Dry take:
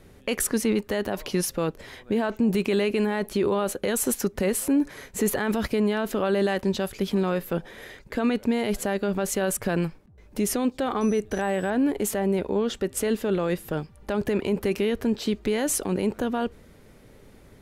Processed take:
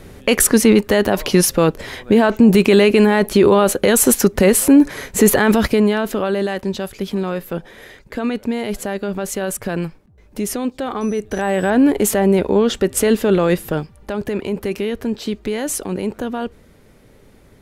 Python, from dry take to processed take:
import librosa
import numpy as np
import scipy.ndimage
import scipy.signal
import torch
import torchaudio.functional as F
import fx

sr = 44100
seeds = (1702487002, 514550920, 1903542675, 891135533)

y = fx.gain(x, sr, db=fx.line((5.48, 12.0), (6.48, 2.5), (11.14, 2.5), (11.73, 10.0), (13.57, 10.0), (14.16, 2.5)))